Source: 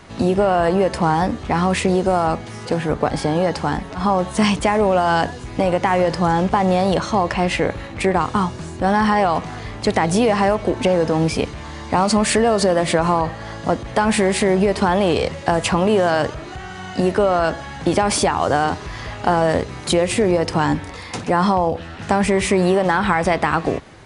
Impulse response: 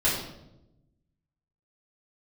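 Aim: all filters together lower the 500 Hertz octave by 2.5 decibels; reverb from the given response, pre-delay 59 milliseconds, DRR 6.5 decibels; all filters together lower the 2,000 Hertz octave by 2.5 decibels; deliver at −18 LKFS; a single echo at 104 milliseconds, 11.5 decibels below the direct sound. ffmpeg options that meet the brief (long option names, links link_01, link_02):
-filter_complex "[0:a]equalizer=frequency=500:width_type=o:gain=-3,equalizer=frequency=2000:width_type=o:gain=-3,aecho=1:1:104:0.266,asplit=2[link_01][link_02];[1:a]atrim=start_sample=2205,adelay=59[link_03];[link_02][link_03]afir=irnorm=-1:irlink=0,volume=-19dB[link_04];[link_01][link_04]amix=inputs=2:normalize=0,volume=1dB"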